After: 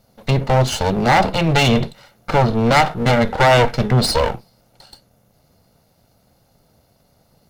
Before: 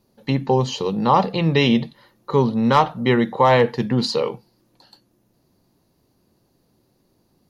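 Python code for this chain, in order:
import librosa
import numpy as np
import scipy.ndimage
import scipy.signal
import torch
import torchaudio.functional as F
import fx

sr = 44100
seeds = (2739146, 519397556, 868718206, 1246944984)

y = fx.lower_of_two(x, sr, delay_ms=1.4)
y = 10.0 ** (-15.0 / 20.0) * np.tanh(y / 10.0 ** (-15.0 / 20.0))
y = F.gain(torch.from_numpy(y), 8.0).numpy()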